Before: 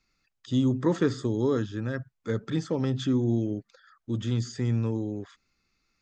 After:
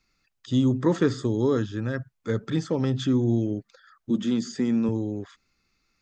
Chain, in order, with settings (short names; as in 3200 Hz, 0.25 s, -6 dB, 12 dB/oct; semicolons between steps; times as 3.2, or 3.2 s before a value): 4.1–4.89 resonant low shelf 150 Hz -10.5 dB, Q 3; gain +2.5 dB